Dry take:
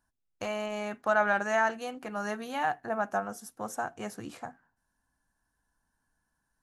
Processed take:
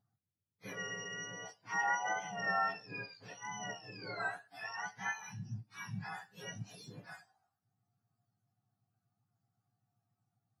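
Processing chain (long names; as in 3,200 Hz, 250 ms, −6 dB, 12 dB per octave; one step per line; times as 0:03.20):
frequency axis turned over on the octave scale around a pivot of 1,100 Hz
time stretch by phase vocoder 1.6×
level −4.5 dB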